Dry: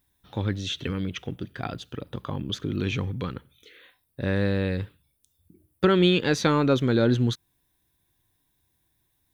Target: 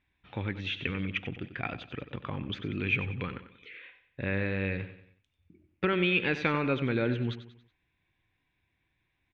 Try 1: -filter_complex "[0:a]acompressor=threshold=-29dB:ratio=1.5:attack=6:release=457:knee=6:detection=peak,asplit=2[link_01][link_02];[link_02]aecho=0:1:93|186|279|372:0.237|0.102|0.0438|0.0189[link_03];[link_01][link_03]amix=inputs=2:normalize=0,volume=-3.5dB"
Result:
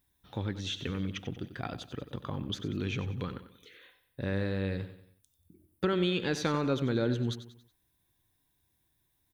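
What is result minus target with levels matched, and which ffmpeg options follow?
2,000 Hz band −7.0 dB
-filter_complex "[0:a]acompressor=threshold=-29dB:ratio=1.5:attack=6:release=457:knee=6:detection=peak,lowpass=frequency=2400:width_type=q:width=4.7,asplit=2[link_01][link_02];[link_02]aecho=0:1:93|186|279|372:0.237|0.102|0.0438|0.0189[link_03];[link_01][link_03]amix=inputs=2:normalize=0,volume=-3.5dB"

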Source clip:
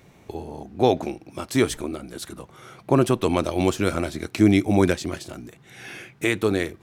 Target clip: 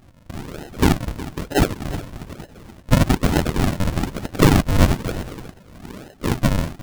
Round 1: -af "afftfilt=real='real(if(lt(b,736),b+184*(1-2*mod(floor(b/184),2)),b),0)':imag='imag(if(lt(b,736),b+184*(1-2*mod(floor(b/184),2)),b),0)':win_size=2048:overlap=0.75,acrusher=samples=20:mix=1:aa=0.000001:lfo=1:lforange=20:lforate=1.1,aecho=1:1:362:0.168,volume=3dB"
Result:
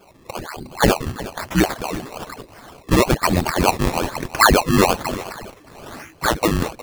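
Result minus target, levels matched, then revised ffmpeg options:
sample-and-hold swept by an LFO: distortion −9 dB
-af "afftfilt=real='real(if(lt(b,736),b+184*(1-2*mod(floor(b/184),2)),b),0)':imag='imag(if(lt(b,736),b+184*(1-2*mod(floor(b/184),2)),b),0)':win_size=2048:overlap=0.75,acrusher=samples=76:mix=1:aa=0.000001:lfo=1:lforange=76:lforate=1.1,aecho=1:1:362:0.168,volume=3dB"

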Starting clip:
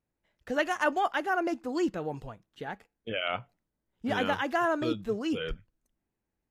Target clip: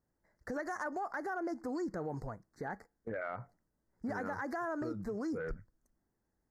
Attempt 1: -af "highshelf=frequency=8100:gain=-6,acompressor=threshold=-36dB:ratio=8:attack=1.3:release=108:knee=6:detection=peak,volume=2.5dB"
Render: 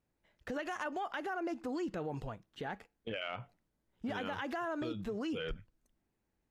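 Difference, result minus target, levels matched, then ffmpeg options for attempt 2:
4,000 Hz band +16.5 dB
-af "asuperstop=centerf=3000:order=8:qfactor=1.2,highshelf=frequency=8100:gain=-6,acompressor=threshold=-36dB:ratio=8:attack=1.3:release=108:knee=6:detection=peak,volume=2.5dB"

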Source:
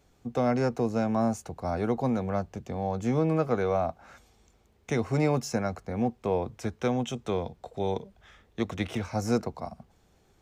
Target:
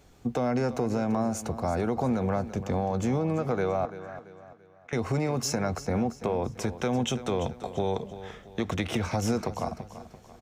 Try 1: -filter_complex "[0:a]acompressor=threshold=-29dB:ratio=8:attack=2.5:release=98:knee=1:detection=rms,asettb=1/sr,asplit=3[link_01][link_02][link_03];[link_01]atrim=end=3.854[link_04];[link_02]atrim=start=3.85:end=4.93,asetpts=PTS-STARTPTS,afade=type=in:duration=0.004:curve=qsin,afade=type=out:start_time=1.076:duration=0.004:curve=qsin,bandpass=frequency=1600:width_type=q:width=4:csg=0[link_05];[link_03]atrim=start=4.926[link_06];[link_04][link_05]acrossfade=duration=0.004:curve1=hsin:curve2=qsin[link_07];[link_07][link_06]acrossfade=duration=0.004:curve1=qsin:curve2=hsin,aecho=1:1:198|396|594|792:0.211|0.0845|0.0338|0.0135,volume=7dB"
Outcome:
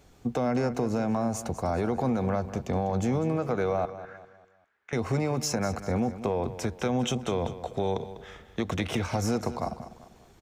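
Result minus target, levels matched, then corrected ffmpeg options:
echo 140 ms early
-filter_complex "[0:a]acompressor=threshold=-29dB:ratio=8:attack=2.5:release=98:knee=1:detection=rms,asettb=1/sr,asplit=3[link_01][link_02][link_03];[link_01]atrim=end=3.854[link_04];[link_02]atrim=start=3.85:end=4.93,asetpts=PTS-STARTPTS,afade=type=in:duration=0.004:curve=qsin,afade=type=out:start_time=1.076:duration=0.004:curve=qsin,bandpass=frequency=1600:width_type=q:width=4:csg=0[link_05];[link_03]atrim=start=4.926[link_06];[link_04][link_05]acrossfade=duration=0.004:curve1=hsin:curve2=qsin[link_07];[link_07][link_06]acrossfade=duration=0.004:curve1=qsin:curve2=hsin,aecho=1:1:338|676|1014|1352:0.211|0.0845|0.0338|0.0135,volume=7dB"

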